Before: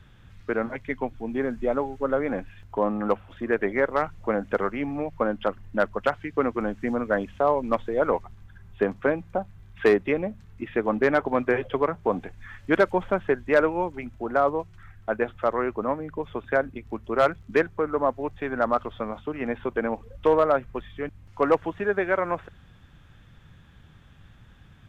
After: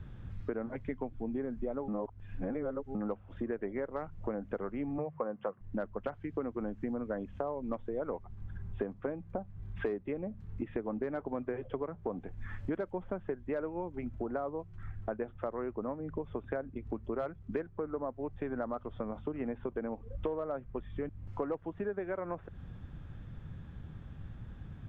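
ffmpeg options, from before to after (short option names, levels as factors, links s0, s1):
-filter_complex "[0:a]asettb=1/sr,asplit=3[s0][s1][s2];[s0]atrim=end=4.984[s3];[s1]atrim=start=4.98:end=5.61,asetpts=PTS-STARTPTS,afade=t=in:d=0.004:c=qsin,afade=t=out:st=0.626:d=0.004:c=qsin,highpass=f=130:w=0.5412,highpass=f=130:w=1.3066,equalizer=f=140:t=q:w=4:g=9,equalizer=f=270:t=q:w=4:g=-9,equalizer=f=490:t=q:w=4:g=7,equalizer=f=750:t=q:w=4:g=4,equalizer=f=1100:t=q:w=4:g=9,equalizer=f=1800:t=q:w=4:g=3,lowpass=f=2900:w=0.5412,lowpass=f=2900:w=1.3066[s4];[s2]atrim=start=5.606[s5];[s3][s4]acrossfade=d=0.004:c1=hsin:c2=qsin[s6];[s6][s5]acrossfade=d=0.004:c1=qsin:c2=hsin,asplit=3[s7][s8][s9];[s7]atrim=end=1.882[s10];[s8]atrim=start=1.878:end=2.952,asetpts=PTS-STARTPTS,areverse[s11];[s9]atrim=start=2.948[s12];[s10][s11]acrossfade=d=0.004:c1=hsin:c2=hsin[s13];[s13][s12]acrossfade=d=0.004:c1=hsin:c2=hsin,tiltshelf=f=760:g=5.5,acompressor=threshold=0.0178:ratio=6,highshelf=f=3200:g=-8.5,volume=1.12"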